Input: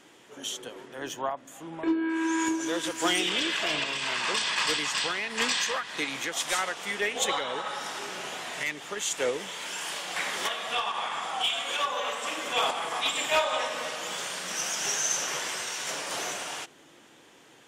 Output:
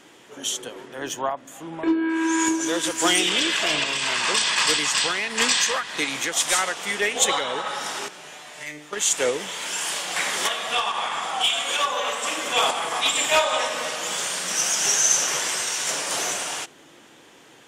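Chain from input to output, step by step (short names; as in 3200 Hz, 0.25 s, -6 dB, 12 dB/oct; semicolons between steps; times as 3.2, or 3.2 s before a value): dynamic EQ 8400 Hz, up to +6 dB, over -45 dBFS, Q 0.84; 8.08–8.93 resonator 150 Hz, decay 0.47 s, harmonics all, mix 80%; gain +5 dB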